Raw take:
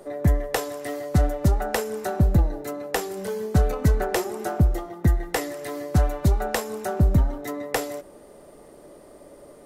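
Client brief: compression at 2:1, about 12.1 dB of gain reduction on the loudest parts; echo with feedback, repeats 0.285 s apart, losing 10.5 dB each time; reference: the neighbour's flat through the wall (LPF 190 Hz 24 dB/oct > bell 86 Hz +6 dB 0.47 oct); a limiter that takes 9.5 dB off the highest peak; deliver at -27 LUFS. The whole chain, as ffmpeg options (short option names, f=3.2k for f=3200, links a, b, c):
-af "acompressor=threshold=-37dB:ratio=2,alimiter=level_in=2dB:limit=-24dB:level=0:latency=1,volume=-2dB,lowpass=f=190:w=0.5412,lowpass=f=190:w=1.3066,equalizer=f=86:t=o:w=0.47:g=6,aecho=1:1:285|570|855:0.299|0.0896|0.0269,volume=11.5dB"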